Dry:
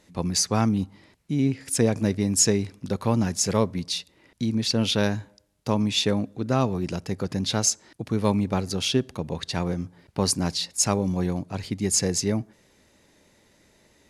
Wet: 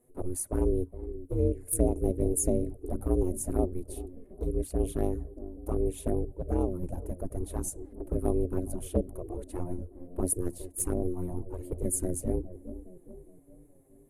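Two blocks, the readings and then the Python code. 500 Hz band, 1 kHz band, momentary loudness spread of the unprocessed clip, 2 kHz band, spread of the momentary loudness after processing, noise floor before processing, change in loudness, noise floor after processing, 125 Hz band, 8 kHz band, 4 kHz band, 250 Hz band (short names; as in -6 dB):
-3.5 dB, -12.0 dB, 9 LU, under -20 dB, 13 LU, -61 dBFS, -7.5 dB, -56 dBFS, -7.0 dB, -10.0 dB, under -30 dB, -8.0 dB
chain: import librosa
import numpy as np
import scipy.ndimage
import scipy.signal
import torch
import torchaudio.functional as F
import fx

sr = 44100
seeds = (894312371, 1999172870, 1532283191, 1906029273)

p1 = fx.curve_eq(x, sr, hz=(370.0, 5200.0, 9800.0), db=(0, -30, 7))
p2 = p1 * np.sin(2.0 * np.pi * 180.0 * np.arange(len(p1)) / sr)
p3 = p2 + fx.echo_wet_lowpass(p2, sr, ms=414, feedback_pct=53, hz=460.0, wet_db=-10.5, dry=0)
y = fx.env_flanger(p3, sr, rest_ms=8.3, full_db=-21.5)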